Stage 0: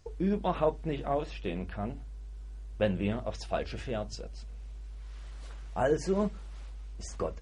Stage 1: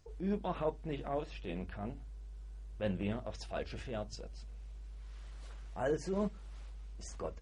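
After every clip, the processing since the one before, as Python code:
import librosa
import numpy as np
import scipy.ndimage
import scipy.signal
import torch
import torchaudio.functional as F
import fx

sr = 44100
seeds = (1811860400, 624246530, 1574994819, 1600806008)

y = fx.transient(x, sr, attack_db=-8, sustain_db=-3)
y = F.gain(torch.from_numpy(y), -4.0).numpy()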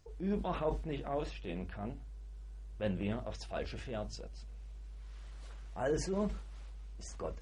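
y = fx.sustainer(x, sr, db_per_s=78.0)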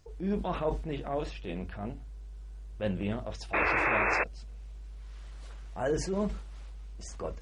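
y = fx.spec_paint(x, sr, seeds[0], shape='noise', start_s=3.53, length_s=0.71, low_hz=290.0, high_hz=2700.0, level_db=-31.0)
y = F.gain(torch.from_numpy(y), 3.5).numpy()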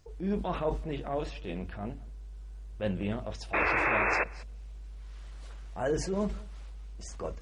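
y = x + 10.0 ** (-23.5 / 20.0) * np.pad(x, (int(196 * sr / 1000.0), 0))[:len(x)]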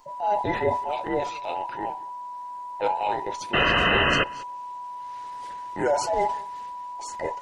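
y = fx.band_invert(x, sr, width_hz=1000)
y = F.gain(torch.from_numpy(y), 6.5).numpy()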